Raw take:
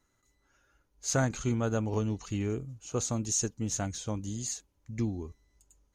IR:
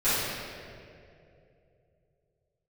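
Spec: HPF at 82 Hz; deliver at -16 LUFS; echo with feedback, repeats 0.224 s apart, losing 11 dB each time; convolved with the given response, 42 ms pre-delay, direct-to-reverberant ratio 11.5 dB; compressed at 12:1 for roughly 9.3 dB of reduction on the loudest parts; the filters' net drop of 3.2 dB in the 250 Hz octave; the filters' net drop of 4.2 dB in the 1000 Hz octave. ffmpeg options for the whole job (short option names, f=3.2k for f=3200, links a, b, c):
-filter_complex "[0:a]highpass=82,equalizer=f=250:t=o:g=-3.5,equalizer=f=1k:t=o:g=-6,acompressor=threshold=-35dB:ratio=12,aecho=1:1:224|448|672:0.282|0.0789|0.0221,asplit=2[a][b];[1:a]atrim=start_sample=2205,adelay=42[c];[b][c]afir=irnorm=-1:irlink=0,volume=-26.5dB[d];[a][d]amix=inputs=2:normalize=0,volume=24dB"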